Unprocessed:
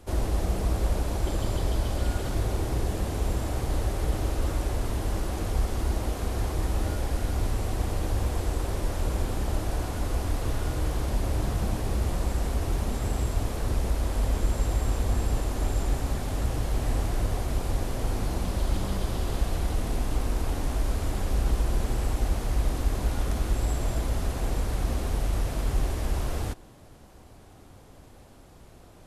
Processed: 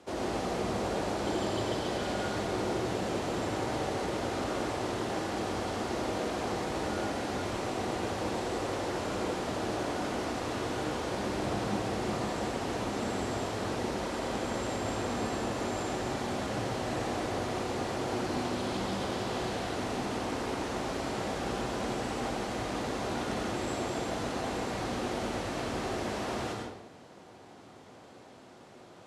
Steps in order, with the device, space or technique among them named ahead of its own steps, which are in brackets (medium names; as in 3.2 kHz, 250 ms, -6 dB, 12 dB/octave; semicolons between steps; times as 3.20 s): supermarket ceiling speaker (band-pass 230–6200 Hz; reverberation RT60 0.85 s, pre-delay 78 ms, DRR 0 dB)